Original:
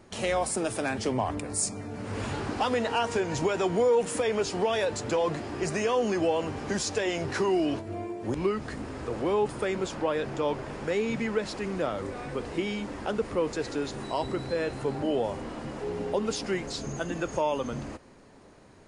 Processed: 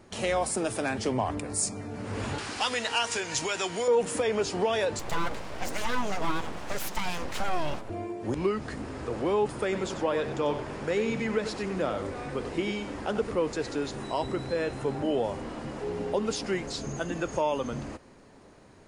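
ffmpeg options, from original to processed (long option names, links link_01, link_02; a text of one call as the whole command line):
ffmpeg -i in.wav -filter_complex "[0:a]asettb=1/sr,asplit=3[link_01][link_02][link_03];[link_01]atrim=end=2.384[link_04];[link_02]atrim=start=2.38:end=3.88,asetpts=PTS-STARTPTS,afade=type=in:duration=0.004:curve=qsin,afade=type=out:start_time=1.496:duration=0.004:curve=qsin,tiltshelf=frequency=1300:gain=-9.5[link_05];[link_03]atrim=start=3.876[link_06];[link_04][link_05]acrossfade=duration=0.004:curve1=hsin:curve2=qsin[link_07];[link_07][link_06]acrossfade=duration=0.004:curve1=qsin:curve2=hsin,asettb=1/sr,asplit=3[link_08][link_09][link_10];[link_08]atrim=end=4.994[link_11];[link_09]atrim=start=4.99:end=7.9,asetpts=PTS-STARTPTS,afade=type=in:duration=0.004:curve=qsin,afade=type=out:start_time=2.906:duration=0.004:curve=qsin,aeval=exprs='abs(val(0))':channel_layout=same[link_12];[link_10]atrim=start=7.896[link_13];[link_11][link_12]acrossfade=duration=0.004:curve1=hsin:curve2=qsin[link_14];[link_14][link_13]acrossfade=duration=0.004:curve1=qsin:curve2=hsin,asettb=1/sr,asplit=3[link_15][link_16][link_17];[link_15]atrim=end=9.634[link_18];[link_16]atrim=start=9.63:end=13.32,asetpts=PTS-STARTPTS,afade=type=in:duration=0.004:curve=qsin,afade=type=out:start_time=3.686:duration=0.004:curve=qsin,aecho=1:1:94:0.335,atrim=end_sample=162729[link_19];[link_17]atrim=start=13.316[link_20];[link_18][link_19]acrossfade=duration=0.004:curve1=hsin:curve2=qsin[link_21];[link_21][link_20]acrossfade=duration=0.004:curve1=qsin:curve2=hsin,asettb=1/sr,asplit=3[link_22][link_23][link_24];[link_22]atrim=end=13.994[link_25];[link_23]atrim=start=13.99:end=15.19,asetpts=PTS-STARTPTS,afade=type=in:duration=0.004:curve=qsin,afade=type=out:start_time=1.196:duration=0.004:curve=qsin,bandreject=frequency=4500:width=12[link_26];[link_24]atrim=start=15.186[link_27];[link_25][link_26]acrossfade=duration=0.004:curve1=hsin:curve2=qsin[link_28];[link_28][link_27]acrossfade=duration=0.004:curve1=qsin:curve2=hsin" out.wav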